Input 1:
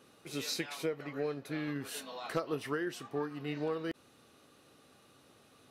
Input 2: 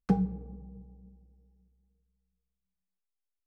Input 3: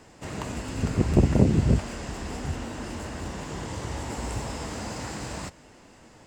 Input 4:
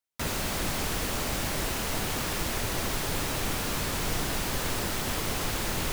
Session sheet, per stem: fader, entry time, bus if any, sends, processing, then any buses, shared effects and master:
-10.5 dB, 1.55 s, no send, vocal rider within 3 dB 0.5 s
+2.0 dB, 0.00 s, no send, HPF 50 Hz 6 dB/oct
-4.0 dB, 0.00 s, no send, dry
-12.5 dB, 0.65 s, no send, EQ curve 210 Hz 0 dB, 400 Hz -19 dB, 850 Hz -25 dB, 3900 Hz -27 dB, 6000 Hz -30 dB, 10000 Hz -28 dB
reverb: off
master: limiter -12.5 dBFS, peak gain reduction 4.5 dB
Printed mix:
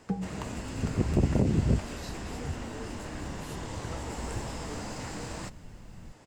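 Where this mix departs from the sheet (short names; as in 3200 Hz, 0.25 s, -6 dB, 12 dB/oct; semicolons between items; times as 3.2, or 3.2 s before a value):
stem 2 +2.0 dB -> -6.0 dB; stem 4: entry 0.65 s -> 0.20 s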